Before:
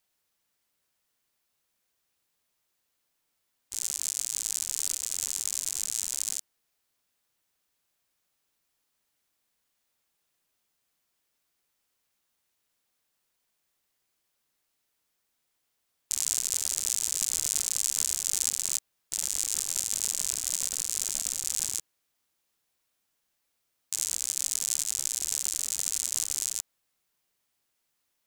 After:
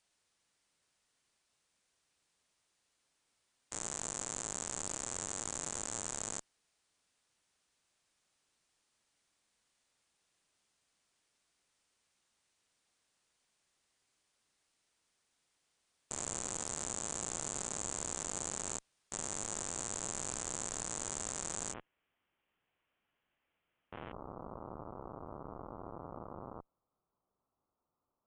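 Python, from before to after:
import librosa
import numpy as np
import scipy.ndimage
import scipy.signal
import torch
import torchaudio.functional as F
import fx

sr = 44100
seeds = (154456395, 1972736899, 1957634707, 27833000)

y = fx.tube_stage(x, sr, drive_db=33.0, bias=0.75)
y = fx.steep_lowpass(y, sr, hz=fx.steps((0.0, 9900.0), (21.72, 3200.0), (24.11, 1300.0)), slope=72)
y = F.gain(torch.from_numpy(y), 6.0).numpy()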